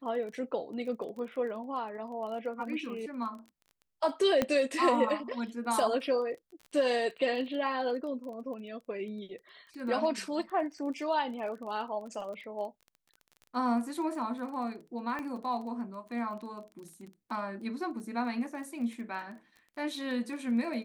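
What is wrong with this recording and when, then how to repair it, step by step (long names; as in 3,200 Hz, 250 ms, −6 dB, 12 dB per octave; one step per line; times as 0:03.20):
surface crackle 21 per second −41 dBFS
0:04.42: click −13 dBFS
0:15.19: click −25 dBFS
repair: click removal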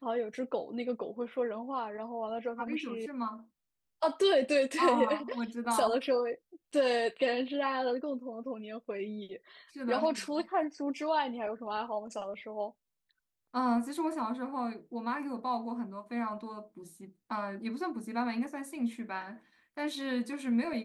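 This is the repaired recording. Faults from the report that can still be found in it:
0:15.19: click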